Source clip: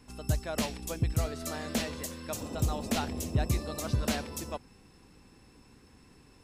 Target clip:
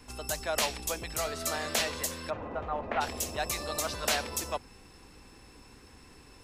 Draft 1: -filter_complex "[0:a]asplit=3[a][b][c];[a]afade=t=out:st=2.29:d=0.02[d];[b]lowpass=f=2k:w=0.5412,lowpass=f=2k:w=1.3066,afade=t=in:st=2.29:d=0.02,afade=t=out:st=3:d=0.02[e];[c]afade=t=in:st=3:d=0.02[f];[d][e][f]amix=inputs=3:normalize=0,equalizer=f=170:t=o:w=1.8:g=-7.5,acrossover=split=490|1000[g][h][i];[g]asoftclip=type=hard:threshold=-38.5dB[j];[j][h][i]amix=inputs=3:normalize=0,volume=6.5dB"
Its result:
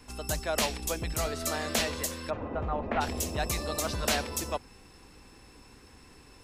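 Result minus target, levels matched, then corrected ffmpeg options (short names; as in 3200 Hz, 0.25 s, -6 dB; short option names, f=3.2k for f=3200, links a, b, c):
hard clip: distortion -4 dB
-filter_complex "[0:a]asplit=3[a][b][c];[a]afade=t=out:st=2.29:d=0.02[d];[b]lowpass=f=2k:w=0.5412,lowpass=f=2k:w=1.3066,afade=t=in:st=2.29:d=0.02,afade=t=out:st=3:d=0.02[e];[c]afade=t=in:st=3:d=0.02[f];[d][e][f]amix=inputs=3:normalize=0,equalizer=f=170:t=o:w=1.8:g=-7.5,acrossover=split=490|1000[g][h][i];[g]asoftclip=type=hard:threshold=-48.5dB[j];[j][h][i]amix=inputs=3:normalize=0,volume=6.5dB"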